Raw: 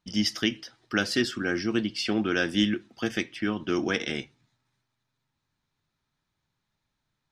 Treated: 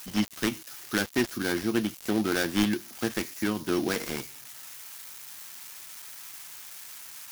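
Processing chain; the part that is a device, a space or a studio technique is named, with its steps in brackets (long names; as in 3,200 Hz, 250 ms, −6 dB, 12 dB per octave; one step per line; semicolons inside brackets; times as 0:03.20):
budget class-D amplifier (gap after every zero crossing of 0.19 ms; spike at every zero crossing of −26.5 dBFS)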